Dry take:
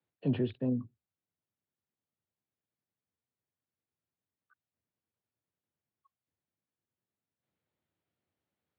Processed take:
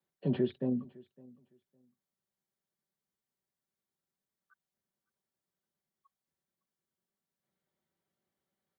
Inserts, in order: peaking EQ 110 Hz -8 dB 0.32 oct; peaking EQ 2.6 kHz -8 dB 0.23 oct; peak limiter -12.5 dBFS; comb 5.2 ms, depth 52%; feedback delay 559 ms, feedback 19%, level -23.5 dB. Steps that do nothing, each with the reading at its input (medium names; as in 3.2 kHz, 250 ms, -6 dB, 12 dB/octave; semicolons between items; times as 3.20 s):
peak limiter -12.5 dBFS: peak at its input -20.5 dBFS